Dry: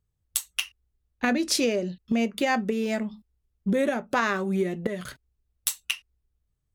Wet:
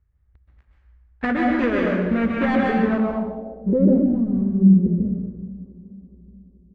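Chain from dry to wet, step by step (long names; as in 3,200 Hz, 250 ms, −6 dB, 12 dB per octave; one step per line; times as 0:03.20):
gap after every zero crossing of 0.23 ms
parametric band 62 Hz +14 dB 0.81 octaves
bucket-brigade delay 426 ms, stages 4,096, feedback 53%, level −19 dB
dense smooth reverb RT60 1.2 s, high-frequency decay 0.85×, pre-delay 115 ms, DRR −2 dB
low-pass filter sweep 1,800 Hz → 210 Hz, 0:02.80–0:04.30
low-shelf EQ 180 Hz +4.5 dB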